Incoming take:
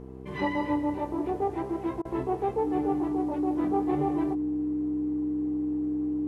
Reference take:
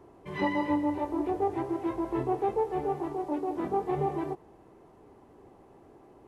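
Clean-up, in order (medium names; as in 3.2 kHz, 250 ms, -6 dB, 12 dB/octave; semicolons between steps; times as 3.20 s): de-hum 65 Hz, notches 7; band-stop 300 Hz, Q 30; interpolate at 2.02 s, 29 ms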